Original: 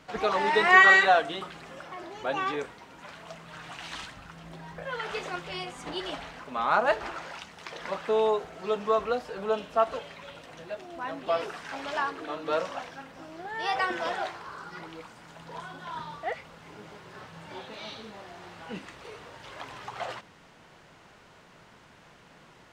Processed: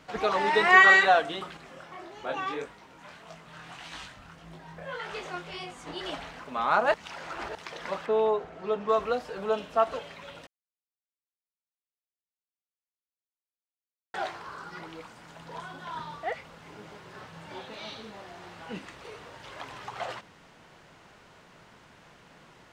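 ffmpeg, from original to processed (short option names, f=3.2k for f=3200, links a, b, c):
-filter_complex "[0:a]asettb=1/sr,asplit=3[a][b][c];[a]atrim=end=1.574[d];[b]atrim=start=1.57:end=6.01,asetpts=PTS-STARTPTS,afade=t=in:d=0.004:c=qsin,afade=t=out:st=4.436:d=0.004:c=qsin,flanger=delay=19:depth=6.4:speed=1.7[e];[c]atrim=start=6.006[f];[d][e]acrossfade=d=0.004:c1=hsin:c2=qsin[g];[g][f]acrossfade=d=0.004:c1=qsin:c2=hsin,asettb=1/sr,asplit=3[h][i][j];[h]atrim=end=8.064[k];[i]atrim=start=8.06:end=8.89,asetpts=PTS-STARTPTS,afade=t=in:d=0.004:c=qsin,afade=t=out:st=0.826:d=0.004:c=qsin,lowpass=f=1.9k:p=1[l];[j]atrim=start=8.886[m];[k][l]acrossfade=d=0.004:c1=hsin:c2=qsin[n];[n][m]acrossfade=d=0.004:c1=qsin:c2=hsin,asplit=5[o][p][q][r][s];[o]atrim=end=6.942[t];[p]atrim=start=6.938:end=7.552,asetpts=PTS-STARTPTS,areverse[u];[q]atrim=start=7.548:end=10.47,asetpts=PTS-STARTPTS,afade=t=out:st=2.918:d=0.004:c=hsin[v];[r]atrim=start=10.47:end=14.14,asetpts=PTS-STARTPTS,volume=0[w];[s]atrim=start=14.14,asetpts=PTS-STARTPTS,afade=t=in:d=0.004:c=hsin[x];[t][u]acrossfade=d=0.004:c1=hsin:c2=hsin[y];[v][w][x]concat=n=3:v=0:a=1[z];[y][z]acrossfade=d=0.004:c1=hsin:c2=hsin"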